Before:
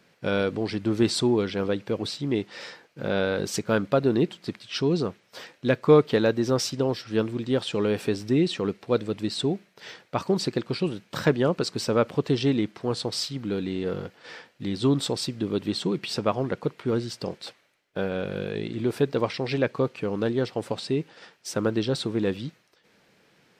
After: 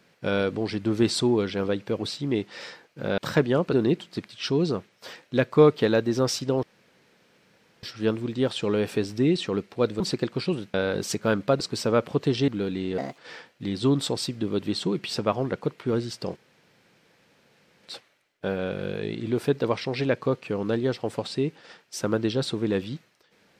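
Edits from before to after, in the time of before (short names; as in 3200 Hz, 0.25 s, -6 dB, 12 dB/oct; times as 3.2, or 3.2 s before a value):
3.18–4.04 swap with 11.08–11.63
6.94 insert room tone 1.20 s
9.11–10.34 cut
12.51–13.39 cut
13.89–14.18 speed 142%
17.36 insert room tone 1.47 s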